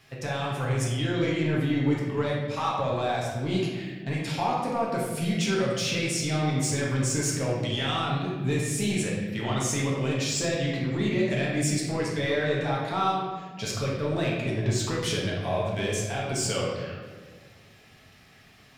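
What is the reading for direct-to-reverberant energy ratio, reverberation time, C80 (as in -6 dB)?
-5.0 dB, 1.6 s, 3.0 dB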